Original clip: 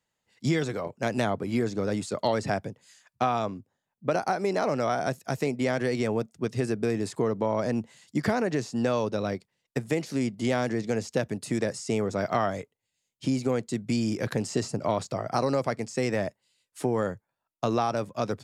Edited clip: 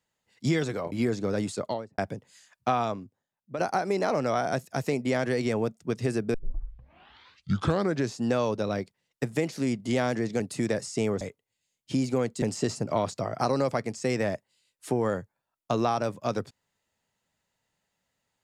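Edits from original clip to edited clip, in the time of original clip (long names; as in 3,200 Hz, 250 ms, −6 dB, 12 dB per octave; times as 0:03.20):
0:00.92–0:01.46: remove
0:02.06–0:02.52: fade out and dull
0:03.35–0:04.13: fade out quadratic, to −8 dB
0:06.88: tape start 1.81 s
0:10.94–0:11.32: remove
0:12.13–0:12.54: remove
0:13.75–0:14.35: remove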